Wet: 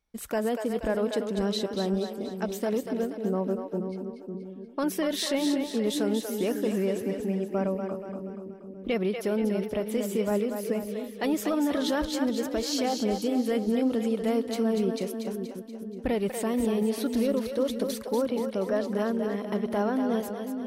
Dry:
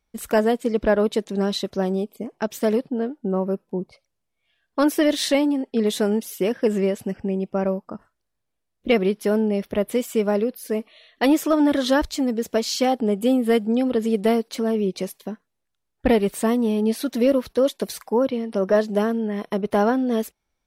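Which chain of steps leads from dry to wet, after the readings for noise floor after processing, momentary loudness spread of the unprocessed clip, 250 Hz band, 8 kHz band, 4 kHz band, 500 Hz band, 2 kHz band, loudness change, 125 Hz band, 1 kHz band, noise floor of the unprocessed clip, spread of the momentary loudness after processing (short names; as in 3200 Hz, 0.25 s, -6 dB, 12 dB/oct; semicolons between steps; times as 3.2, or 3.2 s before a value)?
-42 dBFS, 9 LU, -5.5 dB, -4.0 dB, -5.0 dB, -6.5 dB, -7.5 dB, -6.5 dB, -4.5 dB, -7.0 dB, -78 dBFS, 8 LU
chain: limiter -14.5 dBFS, peak gain reduction 5.5 dB; split-band echo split 420 Hz, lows 0.547 s, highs 0.239 s, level -6 dB; gain -5 dB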